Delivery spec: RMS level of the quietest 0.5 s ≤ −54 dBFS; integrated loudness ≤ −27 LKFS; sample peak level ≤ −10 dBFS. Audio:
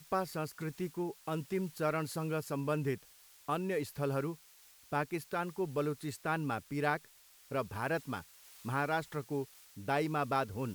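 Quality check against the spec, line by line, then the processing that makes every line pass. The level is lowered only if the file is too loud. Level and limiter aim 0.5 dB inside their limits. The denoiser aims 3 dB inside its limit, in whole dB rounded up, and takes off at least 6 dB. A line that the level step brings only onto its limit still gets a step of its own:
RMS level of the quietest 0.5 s −61 dBFS: in spec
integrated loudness −36.5 LKFS: in spec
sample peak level −17.0 dBFS: in spec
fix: no processing needed

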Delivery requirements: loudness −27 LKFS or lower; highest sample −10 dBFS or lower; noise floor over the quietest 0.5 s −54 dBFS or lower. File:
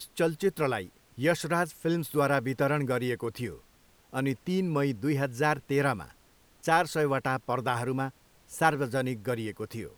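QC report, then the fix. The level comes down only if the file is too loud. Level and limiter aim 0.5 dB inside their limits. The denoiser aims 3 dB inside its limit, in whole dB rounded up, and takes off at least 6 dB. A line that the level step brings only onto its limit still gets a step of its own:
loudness −29.5 LKFS: in spec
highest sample −9.0 dBFS: out of spec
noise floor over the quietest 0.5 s −61 dBFS: in spec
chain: brickwall limiter −10.5 dBFS

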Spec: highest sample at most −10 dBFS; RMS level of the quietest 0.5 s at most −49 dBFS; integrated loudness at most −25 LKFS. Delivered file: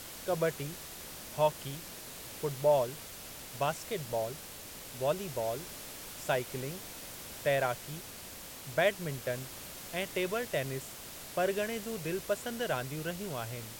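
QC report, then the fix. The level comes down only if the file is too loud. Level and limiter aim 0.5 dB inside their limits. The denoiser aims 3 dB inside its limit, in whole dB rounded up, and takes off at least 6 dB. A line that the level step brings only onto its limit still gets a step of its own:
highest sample −15.0 dBFS: in spec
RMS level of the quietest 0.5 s −47 dBFS: out of spec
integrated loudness −35.0 LKFS: in spec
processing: broadband denoise 6 dB, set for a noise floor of −47 dBFS

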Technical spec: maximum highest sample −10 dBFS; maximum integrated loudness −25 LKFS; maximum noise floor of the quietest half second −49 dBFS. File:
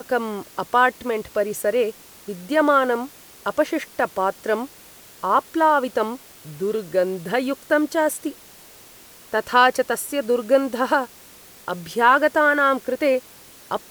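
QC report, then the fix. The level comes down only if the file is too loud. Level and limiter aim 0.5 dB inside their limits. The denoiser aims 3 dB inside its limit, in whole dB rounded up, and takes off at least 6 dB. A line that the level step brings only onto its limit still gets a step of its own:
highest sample −4.5 dBFS: out of spec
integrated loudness −21.5 LKFS: out of spec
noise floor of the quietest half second −46 dBFS: out of spec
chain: level −4 dB
brickwall limiter −10.5 dBFS

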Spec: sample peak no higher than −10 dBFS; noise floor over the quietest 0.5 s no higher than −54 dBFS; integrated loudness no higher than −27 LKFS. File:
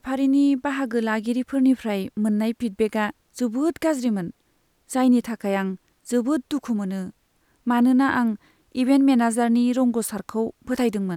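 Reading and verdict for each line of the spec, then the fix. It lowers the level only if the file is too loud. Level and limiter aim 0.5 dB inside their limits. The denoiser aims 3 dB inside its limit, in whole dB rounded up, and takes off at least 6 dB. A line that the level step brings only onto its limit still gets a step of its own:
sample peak −7.5 dBFS: out of spec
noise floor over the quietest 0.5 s −66 dBFS: in spec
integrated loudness −22.5 LKFS: out of spec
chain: level −5 dB

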